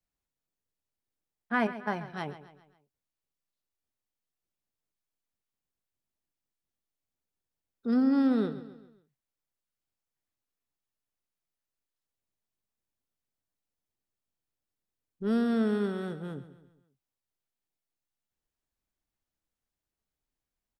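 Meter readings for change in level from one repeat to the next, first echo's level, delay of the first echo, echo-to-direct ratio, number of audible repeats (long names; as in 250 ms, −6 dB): −7.0 dB, −14.0 dB, 135 ms, −13.0 dB, 4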